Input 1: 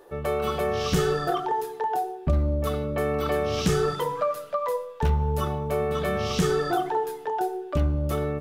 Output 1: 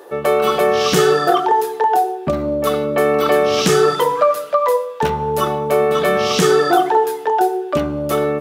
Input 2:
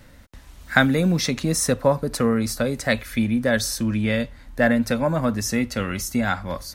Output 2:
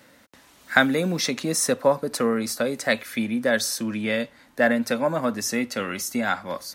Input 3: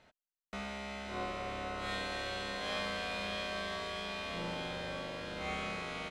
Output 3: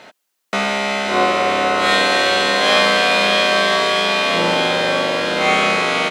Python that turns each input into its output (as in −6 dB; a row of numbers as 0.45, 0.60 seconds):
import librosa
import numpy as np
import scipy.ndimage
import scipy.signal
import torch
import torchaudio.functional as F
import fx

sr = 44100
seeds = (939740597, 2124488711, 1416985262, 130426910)

y = scipy.signal.sosfilt(scipy.signal.butter(2, 250.0, 'highpass', fs=sr, output='sos'), x)
y = librosa.util.normalize(y) * 10.0 ** (-1.5 / 20.0)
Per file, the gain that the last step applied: +11.5, 0.0, +23.5 decibels